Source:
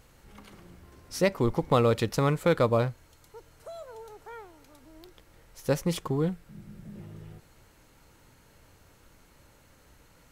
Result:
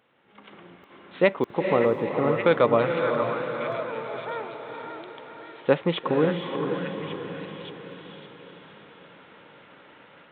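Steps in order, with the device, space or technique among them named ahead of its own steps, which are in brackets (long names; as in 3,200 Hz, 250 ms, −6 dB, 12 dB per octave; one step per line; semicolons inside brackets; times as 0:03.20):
call with lost packets (high-pass filter 170 Hz 12 dB per octave; downsampling to 8,000 Hz; automatic gain control gain up to 13 dB; dropped packets of 60 ms)
0:01.70–0:02.45: Bessel low-pass filter 780 Hz, order 2
high-pass filter 240 Hz 6 dB per octave
feedback delay with all-pass diffusion 471 ms, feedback 52%, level −5 dB
echo through a band-pass that steps 571 ms, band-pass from 1,400 Hz, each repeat 0.7 octaves, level −4.5 dB
level −3.5 dB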